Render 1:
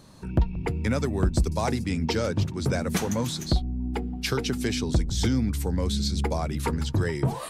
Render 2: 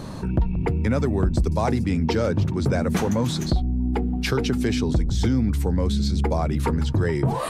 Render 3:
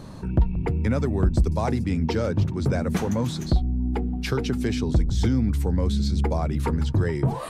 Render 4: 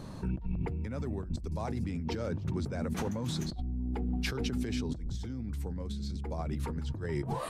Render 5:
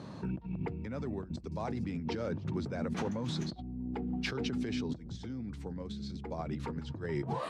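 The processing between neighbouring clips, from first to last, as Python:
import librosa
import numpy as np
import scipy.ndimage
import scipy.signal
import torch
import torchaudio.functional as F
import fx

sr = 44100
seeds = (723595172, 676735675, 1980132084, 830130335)

y1 = fx.high_shelf(x, sr, hz=2500.0, db=-10.0)
y1 = fx.env_flatten(y1, sr, amount_pct=50)
y2 = fx.low_shelf(y1, sr, hz=150.0, db=3.0)
y2 = fx.upward_expand(y2, sr, threshold_db=-28.0, expansion=1.5)
y3 = fx.over_compress(y2, sr, threshold_db=-27.0, ratio=-1.0)
y3 = y3 * 10.0 ** (-7.5 / 20.0)
y4 = fx.bandpass_edges(y3, sr, low_hz=120.0, high_hz=5300.0)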